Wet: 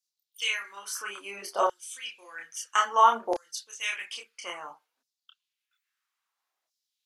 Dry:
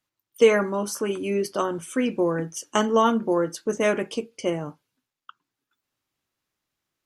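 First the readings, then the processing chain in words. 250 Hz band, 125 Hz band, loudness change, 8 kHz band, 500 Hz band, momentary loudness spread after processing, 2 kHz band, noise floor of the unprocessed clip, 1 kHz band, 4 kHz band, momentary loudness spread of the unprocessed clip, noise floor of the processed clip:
-21.5 dB, under -30 dB, -5.0 dB, -2.0 dB, -13.0 dB, 18 LU, -1.5 dB, under -85 dBFS, +2.0 dB, +1.0 dB, 10 LU, under -85 dBFS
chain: notch 610 Hz, Q 17; LFO high-pass saw down 0.6 Hz 610–5500 Hz; chorus voices 4, 0.75 Hz, delay 28 ms, depth 3.3 ms

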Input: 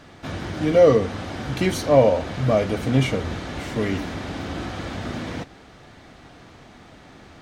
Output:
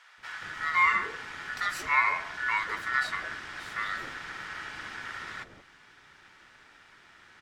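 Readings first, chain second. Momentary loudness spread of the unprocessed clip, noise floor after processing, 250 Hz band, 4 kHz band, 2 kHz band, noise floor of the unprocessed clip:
15 LU, -57 dBFS, -28.0 dB, -6.5 dB, +5.5 dB, -47 dBFS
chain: ring modulator 1600 Hz; bands offset in time highs, lows 0.18 s, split 640 Hz; gain -6.5 dB

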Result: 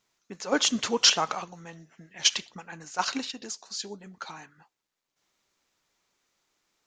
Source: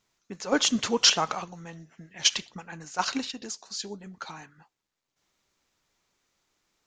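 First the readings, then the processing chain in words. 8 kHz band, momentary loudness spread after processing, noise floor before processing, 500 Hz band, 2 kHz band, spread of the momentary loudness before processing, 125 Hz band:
0.0 dB, 21 LU, -85 dBFS, -0.5 dB, 0.0 dB, 21 LU, -3.5 dB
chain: low shelf 160 Hz -7.5 dB

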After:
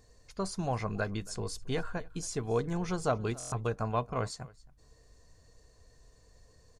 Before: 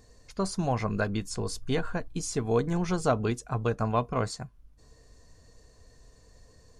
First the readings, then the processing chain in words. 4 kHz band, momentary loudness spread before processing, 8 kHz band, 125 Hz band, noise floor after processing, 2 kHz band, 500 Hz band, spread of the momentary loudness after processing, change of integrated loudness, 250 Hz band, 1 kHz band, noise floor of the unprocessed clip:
-4.0 dB, 7 LU, -3.0 dB, -4.5 dB, -62 dBFS, -4.0 dB, -4.5 dB, 7 LU, -4.5 dB, -6.0 dB, -4.0 dB, -58 dBFS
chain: bell 240 Hz -3.5 dB 0.67 oct; on a send: echo 0.273 s -22.5 dB; on the sum: stuck buffer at 3.38, samples 1024, times 5; gain -4 dB

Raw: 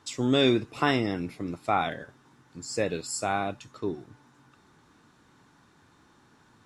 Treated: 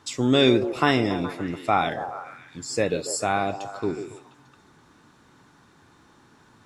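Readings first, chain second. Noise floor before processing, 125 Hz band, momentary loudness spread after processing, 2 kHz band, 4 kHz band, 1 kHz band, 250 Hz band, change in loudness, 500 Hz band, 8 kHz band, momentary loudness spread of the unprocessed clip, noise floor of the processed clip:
-61 dBFS, +4.0 dB, 16 LU, +4.0 dB, +4.0 dB, +4.5 dB, +4.0 dB, +4.0 dB, +5.0 dB, +4.0 dB, 12 LU, -57 dBFS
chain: delay with a stepping band-pass 0.141 s, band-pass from 440 Hz, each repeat 0.7 oct, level -7 dB; gain +4 dB

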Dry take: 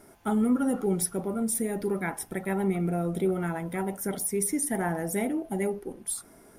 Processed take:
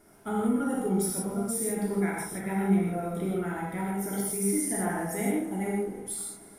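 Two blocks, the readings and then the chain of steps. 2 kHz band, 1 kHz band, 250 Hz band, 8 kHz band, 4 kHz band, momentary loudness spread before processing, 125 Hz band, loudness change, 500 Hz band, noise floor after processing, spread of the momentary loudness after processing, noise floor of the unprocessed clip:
-0.5 dB, +0.5 dB, 0.0 dB, -0.5 dB, -0.5 dB, 7 LU, 0.0 dB, -0.5 dB, -1.5 dB, -51 dBFS, 7 LU, -55 dBFS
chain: multi-head echo 0.105 s, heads first and second, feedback 71%, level -22.5 dB; non-linear reverb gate 0.19 s flat, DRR -4.5 dB; gain -6.5 dB

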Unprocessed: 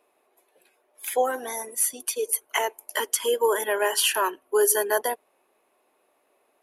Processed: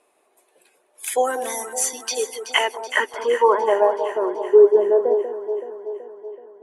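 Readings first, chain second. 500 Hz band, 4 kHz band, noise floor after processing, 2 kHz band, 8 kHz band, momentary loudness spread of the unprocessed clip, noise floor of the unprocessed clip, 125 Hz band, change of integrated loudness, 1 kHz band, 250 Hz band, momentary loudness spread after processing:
+8.5 dB, +1.0 dB, -64 dBFS, +3.5 dB, -2.0 dB, 10 LU, -69 dBFS, n/a, +4.5 dB, +5.0 dB, +8.0 dB, 18 LU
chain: low-pass sweep 8800 Hz -> 460 Hz, 1.62–4.25; echo with dull and thin repeats by turns 0.189 s, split 1000 Hz, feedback 76%, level -8.5 dB; gain +3 dB

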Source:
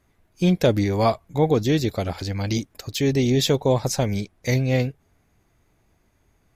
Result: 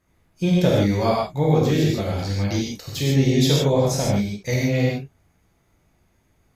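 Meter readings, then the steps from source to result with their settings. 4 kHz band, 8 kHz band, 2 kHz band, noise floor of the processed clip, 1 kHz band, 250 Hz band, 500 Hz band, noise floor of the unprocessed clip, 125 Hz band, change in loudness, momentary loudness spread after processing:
+1.5 dB, +1.5 dB, +1.0 dB, -64 dBFS, +0.5 dB, +2.0 dB, +0.5 dB, -65 dBFS, +2.5 dB, +1.5 dB, 8 LU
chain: non-linear reverb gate 0.18 s flat, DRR -5 dB; gain -5 dB

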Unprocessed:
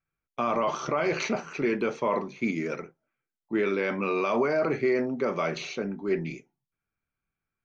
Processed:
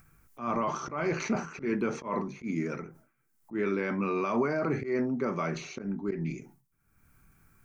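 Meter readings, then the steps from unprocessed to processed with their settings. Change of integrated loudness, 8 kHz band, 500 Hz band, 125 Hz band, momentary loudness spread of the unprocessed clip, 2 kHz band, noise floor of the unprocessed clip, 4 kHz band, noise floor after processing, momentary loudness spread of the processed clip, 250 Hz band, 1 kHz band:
-3.5 dB, n/a, -5.5 dB, +2.0 dB, 8 LU, -5.0 dB, under -85 dBFS, -8.0 dB, -73 dBFS, 8 LU, -1.0 dB, -3.5 dB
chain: bell 560 Hz -9.5 dB 1.4 oct; auto swell 0.119 s; upward compressor, threshold -43 dBFS; bell 3400 Hz -13.5 dB 1.6 oct; sustainer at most 120 dB/s; gain +3.5 dB

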